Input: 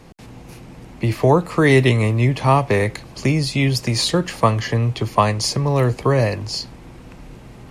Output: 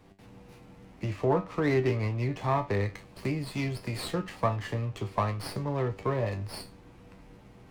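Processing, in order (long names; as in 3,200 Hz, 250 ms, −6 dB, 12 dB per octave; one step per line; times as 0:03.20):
treble cut that deepens with the level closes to 2,100 Hz, closed at −11.5 dBFS
tuned comb filter 97 Hz, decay 0.25 s, harmonics all, mix 80%
windowed peak hold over 5 samples
level −4.5 dB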